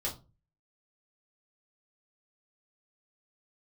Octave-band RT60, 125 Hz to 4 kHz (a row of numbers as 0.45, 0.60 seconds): 0.50, 0.45, 0.35, 0.25, 0.20, 0.20 seconds